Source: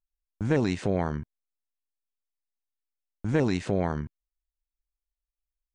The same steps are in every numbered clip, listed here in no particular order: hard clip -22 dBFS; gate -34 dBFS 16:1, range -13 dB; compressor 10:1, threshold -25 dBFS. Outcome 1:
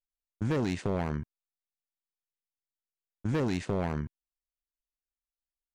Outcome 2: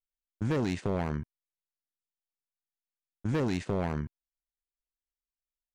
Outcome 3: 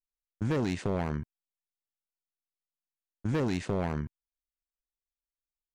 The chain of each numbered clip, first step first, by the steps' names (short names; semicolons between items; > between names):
hard clip > gate > compressor; hard clip > compressor > gate; gate > hard clip > compressor